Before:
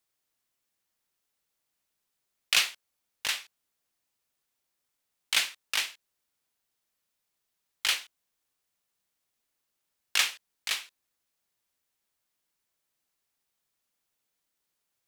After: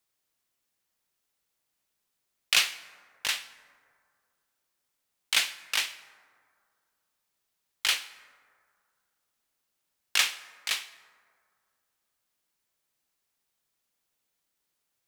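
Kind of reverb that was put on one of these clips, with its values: plate-style reverb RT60 2.2 s, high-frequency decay 0.35×, pre-delay 85 ms, DRR 16.5 dB; trim +1 dB

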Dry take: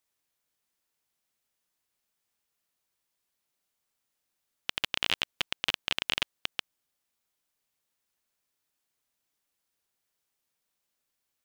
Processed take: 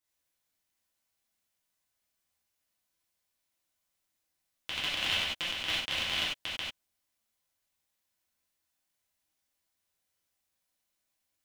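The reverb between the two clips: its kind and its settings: gated-style reverb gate 120 ms flat, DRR -8 dB; trim -9 dB

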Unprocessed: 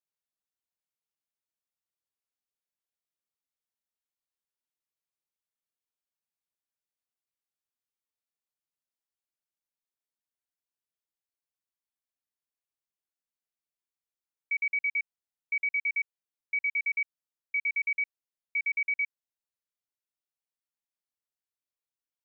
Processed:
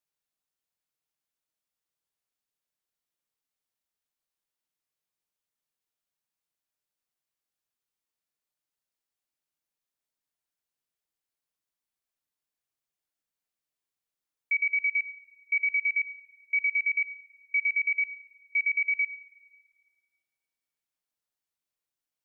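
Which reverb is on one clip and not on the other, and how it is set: simulated room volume 3600 m³, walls mixed, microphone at 0.49 m; trim +3 dB

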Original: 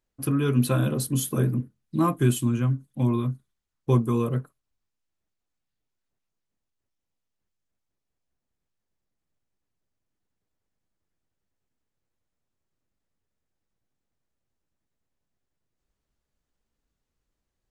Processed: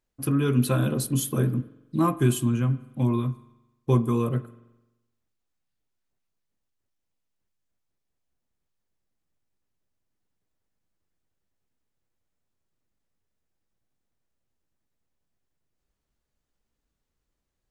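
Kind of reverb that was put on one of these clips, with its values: spring tank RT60 1 s, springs 43 ms, chirp 45 ms, DRR 16 dB

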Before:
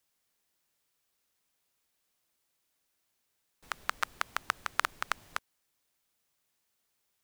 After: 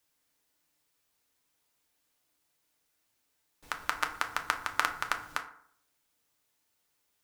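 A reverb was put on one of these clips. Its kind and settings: FDN reverb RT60 0.61 s, low-frequency decay 1×, high-frequency decay 0.5×, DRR 4 dB; trim +1 dB

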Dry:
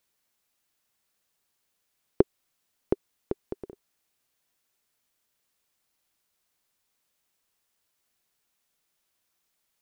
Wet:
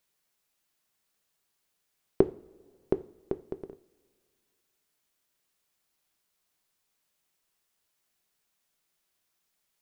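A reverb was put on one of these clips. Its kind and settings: two-slope reverb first 0.37 s, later 2.3 s, from -21 dB, DRR 10.5 dB; trim -1.5 dB

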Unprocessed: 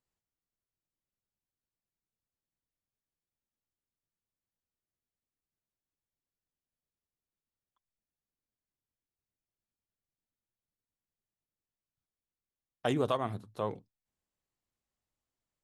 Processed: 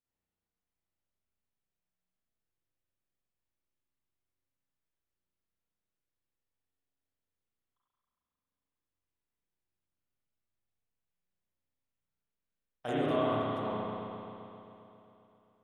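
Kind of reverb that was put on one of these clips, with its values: spring tank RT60 3.1 s, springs 33/44 ms, chirp 50 ms, DRR -10 dB; trim -9 dB

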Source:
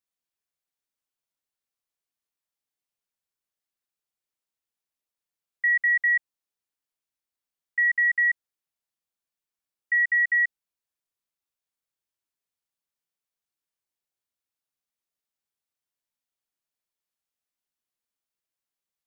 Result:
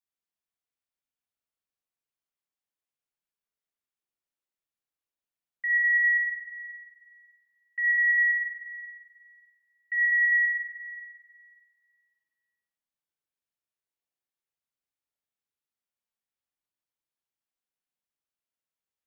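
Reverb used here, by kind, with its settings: spring tank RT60 2 s, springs 42/56 ms, chirp 65 ms, DRR -2 dB; trim -7.5 dB

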